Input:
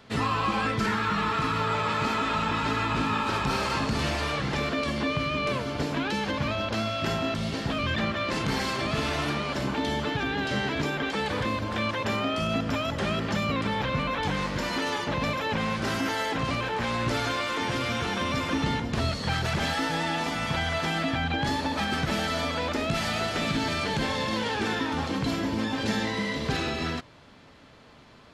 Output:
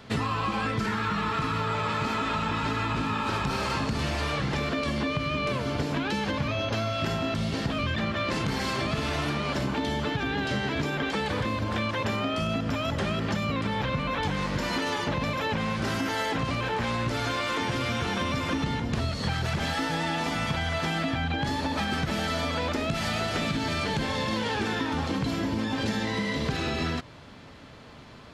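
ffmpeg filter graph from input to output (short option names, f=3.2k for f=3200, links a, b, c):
-filter_complex "[0:a]asettb=1/sr,asplit=3[a][b][c];[a]atrim=end=6.484[d];[b]atrim=start=6.48:end=6.93,asetpts=PTS-STARTPTS,afade=t=in:d=0.004:c=qsin,afade=t=out:st=0.446:d=0.004:c=qsin,equalizer=f=8.3k:t=o:w=0.58:g=-5.5,aecho=1:1:7.3:0.49,atrim=end_sample=19845,aeval=exprs='val(0)+0.00178*sin(2*PI*6200*n/s)':c=same[e];[c]atrim=start=6.926[f];[d][e]acrossfade=d=0.004:c1=hsin:c2=qsin[g];[g][f]acrossfade=d=0.004:c1=qsin:c2=hsin,equalizer=f=94:w=0.57:g=3.5,acompressor=threshold=-29dB:ratio=6,volume=4dB"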